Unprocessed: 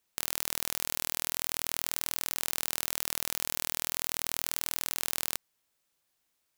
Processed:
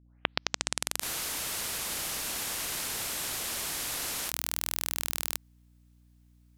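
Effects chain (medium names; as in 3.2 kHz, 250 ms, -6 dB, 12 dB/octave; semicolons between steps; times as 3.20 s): tape start-up on the opening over 1.56 s; hum 60 Hz, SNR 25 dB; spectral freeze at 1.05 s, 3.23 s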